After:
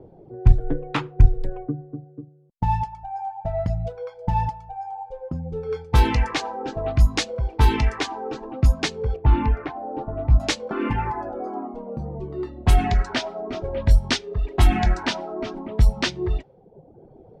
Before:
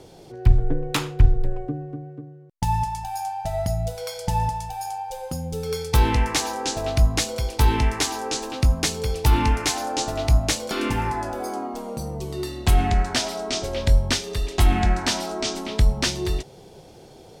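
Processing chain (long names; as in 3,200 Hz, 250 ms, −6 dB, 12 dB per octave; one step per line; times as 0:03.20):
0:09.16–0:10.40: head-to-tape spacing loss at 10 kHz 39 dB
low-pass that shuts in the quiet parts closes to 570 Hz, open at −12 dBFS
reverb reduction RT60 0.93 s
level +2 dB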